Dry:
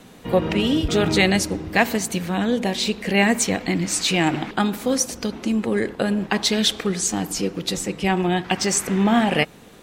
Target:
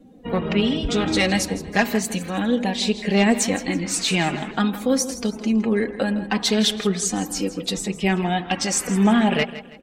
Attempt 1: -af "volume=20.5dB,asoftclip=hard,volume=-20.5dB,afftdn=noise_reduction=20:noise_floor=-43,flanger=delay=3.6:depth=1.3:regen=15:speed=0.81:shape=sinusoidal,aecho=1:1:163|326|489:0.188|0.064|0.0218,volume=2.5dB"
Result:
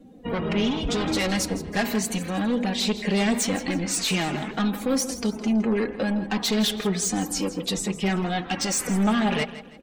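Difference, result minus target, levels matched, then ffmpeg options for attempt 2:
gain into a clipping stage and back: distortion +13 dB
-af "volume=11dB,asoftclip=hard,volume=-11dB,afftdn=noise_reduction=20:noise_floor=-43,flanger=delay=3.6:depth=1.3:regen=15:speed=0.81:shape=sinusoidal,aecho=1:1:163|326|489:0.188|0.064|0.0218,volume=2.5dB"

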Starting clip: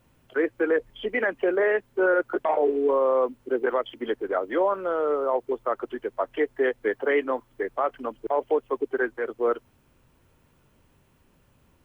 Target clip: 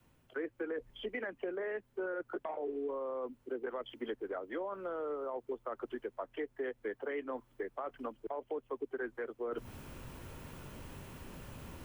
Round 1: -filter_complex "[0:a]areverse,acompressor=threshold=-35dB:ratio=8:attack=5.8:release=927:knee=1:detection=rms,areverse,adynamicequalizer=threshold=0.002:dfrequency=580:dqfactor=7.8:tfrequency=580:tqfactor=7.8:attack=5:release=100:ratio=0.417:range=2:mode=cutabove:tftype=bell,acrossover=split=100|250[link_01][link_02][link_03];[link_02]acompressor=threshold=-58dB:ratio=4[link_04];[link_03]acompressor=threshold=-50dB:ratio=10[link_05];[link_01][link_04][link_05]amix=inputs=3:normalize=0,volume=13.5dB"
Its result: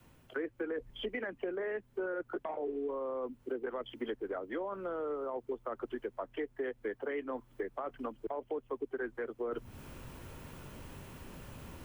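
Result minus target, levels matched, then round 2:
downward compressor: peak gain reduction −6.5 dB
-filter_complex "[0:a]areverse,acompressor=threshold=-42.5dB:ratio=8:attack=5.8:release=927:knee=1:detection=rms,areverse,adynamicequalizer=threshold=0.002:dfrequency=580:dqfactor=7.8:tfrequency=580:tqfactor=7.8:attack=5:release=100:ratio=0.417:range=2:mode=cutabove:tftype=bell,acrossover=split=100|250[link_01][link_02][link_03];[link_02]acompressor=threshold=-58dB:ratio=4[link_04];[link_03]acompressor=threshold=-50dB:ratio=10[link_05];[link_01][link_04][link_05]amix=inputs=3:normalize=0,volume=13.5dB"

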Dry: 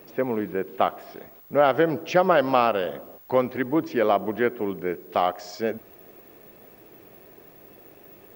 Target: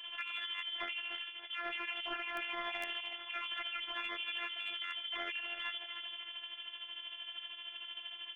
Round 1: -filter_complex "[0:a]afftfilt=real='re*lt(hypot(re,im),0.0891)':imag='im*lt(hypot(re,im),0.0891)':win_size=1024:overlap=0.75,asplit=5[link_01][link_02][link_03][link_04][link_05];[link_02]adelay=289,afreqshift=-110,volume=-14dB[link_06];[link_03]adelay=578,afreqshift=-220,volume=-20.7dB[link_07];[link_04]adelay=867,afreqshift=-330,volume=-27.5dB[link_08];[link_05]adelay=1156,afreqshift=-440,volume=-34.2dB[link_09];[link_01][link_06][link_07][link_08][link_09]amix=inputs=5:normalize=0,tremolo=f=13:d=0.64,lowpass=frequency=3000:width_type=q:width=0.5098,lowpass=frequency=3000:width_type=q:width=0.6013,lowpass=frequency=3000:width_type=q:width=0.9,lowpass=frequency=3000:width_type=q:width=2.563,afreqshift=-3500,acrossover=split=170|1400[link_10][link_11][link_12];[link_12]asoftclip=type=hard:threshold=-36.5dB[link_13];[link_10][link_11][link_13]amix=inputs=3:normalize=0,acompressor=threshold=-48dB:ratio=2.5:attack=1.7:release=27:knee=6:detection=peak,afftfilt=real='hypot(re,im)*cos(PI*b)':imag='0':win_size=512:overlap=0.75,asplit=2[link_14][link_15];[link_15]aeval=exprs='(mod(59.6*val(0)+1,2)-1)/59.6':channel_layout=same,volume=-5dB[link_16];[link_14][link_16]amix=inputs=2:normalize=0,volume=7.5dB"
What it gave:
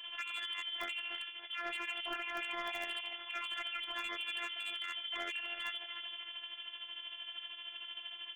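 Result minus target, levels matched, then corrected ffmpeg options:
hard clipping: distortion +27 dB
-filter_complex "[0:a]afftfilt=real='re*lt(hypot(re,im),0.0891)':imag='im*lt(hypot(re,im),0.0891)':win_size=1024:overlap=0.75,asplit=5[link_01][link_02][link_03][link_04][link_05];[link_02]adelay=289,afreqshift=-110,volume=-14dB[link_06];[link_03]adelay=578,afreqshift=-220,volume=-20.7dB[link_07];[link_04]adelay=867,afreqshift=-330,volume=-27.5dB[link_08];[link_05]adelay=1156,afreqshift=-440,volume=-34.2dB[link_09];[link_01][link_06][link_07][link_08][link_09]amix=inputs=5:normalize=0,tremolo=f=13:d=0.64,lowpass=frequency=3000:width_type=q:width=0.5098,lowpass=frequency=3000:width_type=q:width=0.6013,lowpass=frequency=3000:width_type=q:width=0.9,lowpass=frequency=3000:width_type=q:width=2.563,afreqshift=-3500,acrossover=split=170|1400[link_10][link_11][link_12];[link_12]asoftclip=type=hard:threshold=-29dB[link_13];[link_10][link_11][link_13]amix=inputs=3:normalize=0,acompressor=threshold=-48dB:ratio=2.5:attack=1.7:release=27:knee=6:detection=peak,afftfilt=real='hypot(re,im)*cos(PI*b)':imag='0':win_size=512:overlap=0.75,asplit=2[link_14][link_15];[link_15]aeval=exprs='(mod(59.6*val(0)+1,2)-1)/59.6':channel_layout=same,volume=-5dB[link_16];[link_14][link_16]amix=inputs=2:normalize=0,volume=7.5dB"

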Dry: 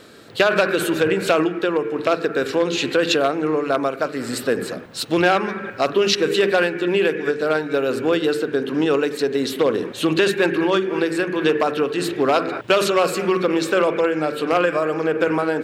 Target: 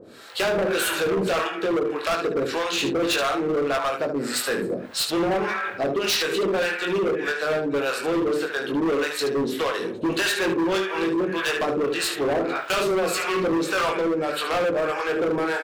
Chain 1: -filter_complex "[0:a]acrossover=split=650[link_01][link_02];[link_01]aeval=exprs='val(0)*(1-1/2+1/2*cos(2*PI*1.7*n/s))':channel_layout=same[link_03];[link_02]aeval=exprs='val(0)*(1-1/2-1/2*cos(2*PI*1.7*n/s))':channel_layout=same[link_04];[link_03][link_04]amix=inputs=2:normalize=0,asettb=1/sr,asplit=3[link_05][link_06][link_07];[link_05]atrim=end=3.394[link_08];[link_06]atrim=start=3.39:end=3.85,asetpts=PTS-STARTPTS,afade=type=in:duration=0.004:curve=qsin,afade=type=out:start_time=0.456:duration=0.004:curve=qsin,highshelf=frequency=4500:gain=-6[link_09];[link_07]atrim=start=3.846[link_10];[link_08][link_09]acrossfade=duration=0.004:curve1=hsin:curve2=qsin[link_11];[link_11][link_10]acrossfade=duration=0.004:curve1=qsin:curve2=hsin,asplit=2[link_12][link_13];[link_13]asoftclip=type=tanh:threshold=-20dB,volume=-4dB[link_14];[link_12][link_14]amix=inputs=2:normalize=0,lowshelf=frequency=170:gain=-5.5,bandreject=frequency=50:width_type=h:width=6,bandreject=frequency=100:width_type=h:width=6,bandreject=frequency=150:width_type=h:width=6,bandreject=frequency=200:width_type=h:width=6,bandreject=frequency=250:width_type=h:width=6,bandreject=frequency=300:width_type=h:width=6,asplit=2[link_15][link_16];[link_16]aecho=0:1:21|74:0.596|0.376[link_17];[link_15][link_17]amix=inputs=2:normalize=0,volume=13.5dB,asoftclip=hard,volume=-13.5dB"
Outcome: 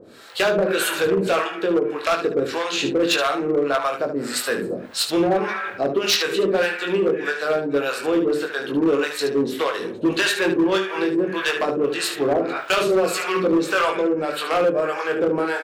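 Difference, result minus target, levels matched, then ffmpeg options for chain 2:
gain into a clipping stage and back: distortion −9 dB
-filter_complex "[0:a]acrossover=split=650[link_01][link_02];[link_01]aeval=exprs='val(0)*(1-1/2+1/2*cos(2*PI*1.7*n/s))':channel_layout=same[link_03];[link_02]aeval=exprs='val(0)*(1-1/2-1/2*cos(2*PI*1.7*n/s))':channel_layout=same[link_04];[link_03][link_04]amix=inputs=2:normalize=0,asettb=1/sr,asplit=3[link_05][link_06][link_07];[link_05]atrim=end=3.394[link_08];[link_06]atrim=start=3.39:end=3.85,asetpts=PTS-STARTPTS,afade=type=in:duration=0.004:curve=qsin,afade=type=out:start_time=0.456:duration=0.004:curve=qsin,highshelf=frequency=4500:gain=-6[link_09];[link_07]atrim=start=3.846[link_10];[link_08][link_09]acrossfade=duration=0.004:curve1=hsin:curve2=qsin[link_11];[link_11][link_10]acrossfade=duration=0.004:curve1=qsin:curve2=hsin,asplit=2[link_12][link_13];[link_13]asoftclip=type=tanh:threshold=-20dB,volume=-4dB[link_14];[link_12][link_14]amix=inputs=2:normalize=0,lowshelf=frequency=170:gain=-5.5,bandreject=frequency=50:width_type=h:width=6,bandreject=frequency=100:width_type=h:width=6,bandreject=frequency=150:width_type=h:width=6,bandreject=frequency=200:width_type=h:width=6,bandreject=frequency=250:width_type=h:width=6,bandreject=frequency=300:width_type=h:width=6,asplit=2[link_15][link_16];[link_16]aecho=0:1:21|74:0.596|0.376[link_17];[link_15][link_17]amix=inputs=2:normalize=0,volume=20dB,asoftclip=hard,volume=-20dB"

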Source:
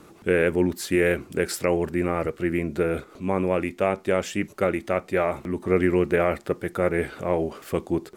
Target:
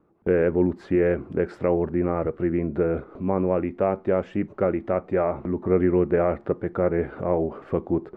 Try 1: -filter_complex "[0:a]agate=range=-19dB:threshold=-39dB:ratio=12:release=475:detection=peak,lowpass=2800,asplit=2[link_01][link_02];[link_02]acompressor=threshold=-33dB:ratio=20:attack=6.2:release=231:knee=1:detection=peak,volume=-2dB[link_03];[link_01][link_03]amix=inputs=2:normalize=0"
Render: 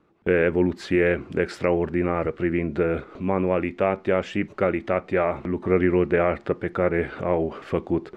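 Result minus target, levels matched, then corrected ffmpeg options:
2,000 Hz band +7.5 dB
-filter_complex "[0:a]agate=range=-19dB:threshold=-39dB:ratio=12:release=475:detection=peak,lowpass=1100,asplit=2[link_01][link_02];[link_02]acompressor=threshold=-33dB:ratio=20:attack=6.2:release=231:knee=1:detection=peak,volume=-2dB[link_03];[link_01][link_03]amix=inputs=2:normalize=0"

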